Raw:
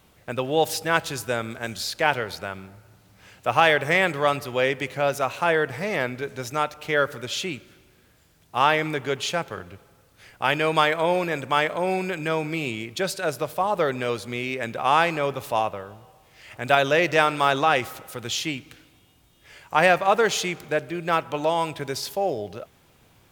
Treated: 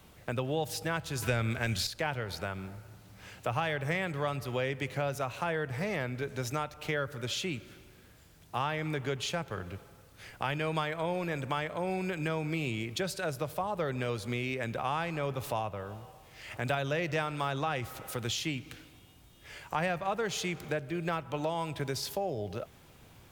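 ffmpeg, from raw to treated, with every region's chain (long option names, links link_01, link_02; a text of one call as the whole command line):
ffmpeg -i in.wav -filter_complex "[0:a]asettb=1/sr,asplit=3[link_01][link_02][link_03];[link_01]atrim=end=1.224[link_04];[link_02]atrim=start=1.22:end=1.87,asetpts=PTS-STARTPTS,afade=type=in:duration=0.004:curve=qsin,afade=type=out:start_time=0.646:duration=0.004:curve=qsin,equalizer=frequency=2400:width_type=o:width=0.98:gain=7,acontrast=75[link_05];[link_03]atrim=start=1.866[link_06];[link_04][link_05]acrossfade=duration=0.004:curve1=hsin:curve2=qsin[link_07];[link_07][link_06]acrossfade=duration=0.004:curve1=qsin:curve2=hsin,acrossover=split=140[link_08][link_09];[link_09]acompressor=threshold=-34dB:ratio=3[link_10];[link_08][link_10]amix=inputs=2:normalize=0,lowshelf=frequency=180:gain=3.5" out.wav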